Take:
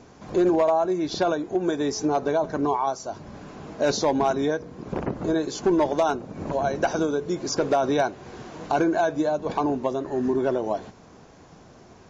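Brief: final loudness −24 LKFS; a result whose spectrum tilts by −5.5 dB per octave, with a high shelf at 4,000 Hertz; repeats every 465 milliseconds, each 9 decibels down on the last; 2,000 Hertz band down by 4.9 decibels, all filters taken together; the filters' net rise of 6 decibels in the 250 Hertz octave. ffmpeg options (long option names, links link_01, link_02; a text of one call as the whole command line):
ffmpeg -i in.wav -af "equalizer=frequency=250:width_type=o:gain=8.5,equalizer=frequency=2000:width_type=o:gain=-6.5,highshelf=frequency=4000:gain=-5.5,aecho=1:1:465|930|1395|1860:0.355|0.124|0.0435|0.0152,volume=-2.5dB" out.wav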